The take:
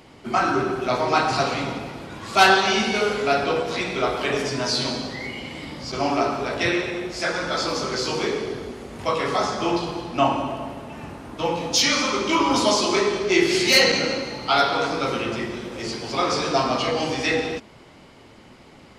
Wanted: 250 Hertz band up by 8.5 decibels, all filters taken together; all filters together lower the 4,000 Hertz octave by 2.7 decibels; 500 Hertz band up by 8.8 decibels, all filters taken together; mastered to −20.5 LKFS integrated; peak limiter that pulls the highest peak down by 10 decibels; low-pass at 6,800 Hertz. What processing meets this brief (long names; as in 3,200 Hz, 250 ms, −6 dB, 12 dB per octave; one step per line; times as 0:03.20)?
low-pass filter 6,800 Hz
parametric band 250 Hz +7.5 dB
parametric band 500 Hz +9 dB
parametric band 4,000 Hz −3 dB
level −1 dB
brickwall limiter −10.5 dBFS